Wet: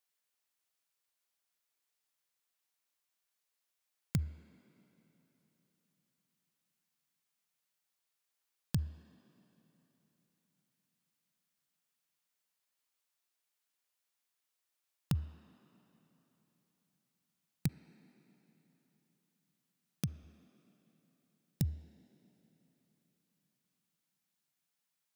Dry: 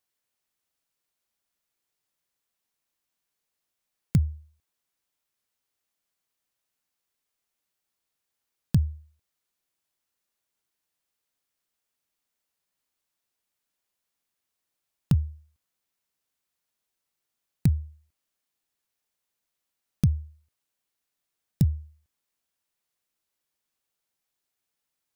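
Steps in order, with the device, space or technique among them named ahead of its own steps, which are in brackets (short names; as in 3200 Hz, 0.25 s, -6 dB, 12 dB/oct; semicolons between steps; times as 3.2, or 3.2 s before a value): 17.67–20.23 HPF 430 Hz -> 130 Hz 12 dB/oct; filtered reverb send (on a send: HPF 230 Hz 24 dB/oct + LPF 3300 Hz 12 dB/oct + reverb RT60 3.8 s, pre-delay 38 ms, DRR 11.5 dB); on the sum: low shelf 460 Hz -10.5 dB; gain -2 dB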